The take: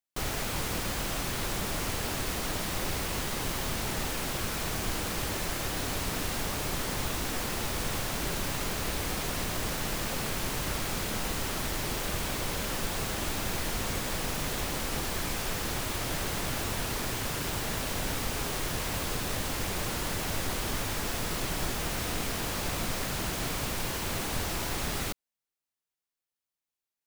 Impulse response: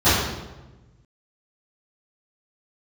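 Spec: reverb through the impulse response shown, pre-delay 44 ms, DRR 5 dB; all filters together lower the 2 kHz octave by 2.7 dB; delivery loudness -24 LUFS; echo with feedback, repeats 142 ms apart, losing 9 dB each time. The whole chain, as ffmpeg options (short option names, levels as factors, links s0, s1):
-filter_complex "[0:a]equalizer=f=2000:t=o:g=-3.5,aecho=1:1:142|284|426|568:0.355|0.124|0.0435|0.0152,asplit=2[s0][s1];[1:a]atrim=start_sample=2205,adelay=44[s2];[s1][s2]afir=irnorm=-1:irlink=0,volume=0.0398[s3];[s0][s3]amix=inputs=2:normalize=0,volume=2"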